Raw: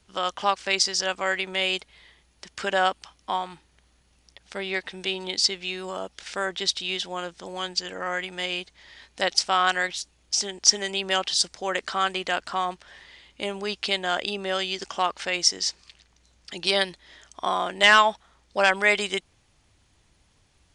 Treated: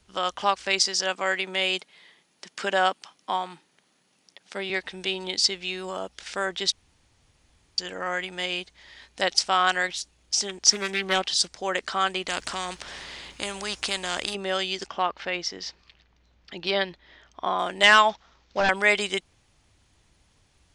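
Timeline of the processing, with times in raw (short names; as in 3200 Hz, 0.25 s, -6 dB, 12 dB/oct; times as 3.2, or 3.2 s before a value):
0.85–4.7 HPF 160 Hz 24 dB/oct
6.72–7.78 room tone
10.49–11.6 Doppler distortion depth 0.25 ms
12.28–14.35 spectral compressor 2:1
14.87–17.59 air absorption 200 m
18.09–18.69 CVSD 32 kbps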